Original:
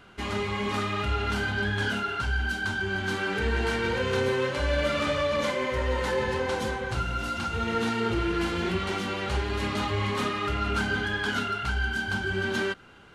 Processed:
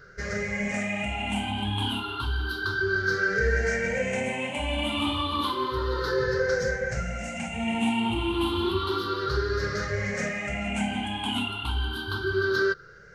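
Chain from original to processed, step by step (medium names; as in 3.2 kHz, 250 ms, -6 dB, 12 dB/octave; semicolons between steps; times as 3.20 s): drifting ripple filter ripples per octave 0.57, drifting +0.31 Hz, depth 23 dB; trim -4.5 dB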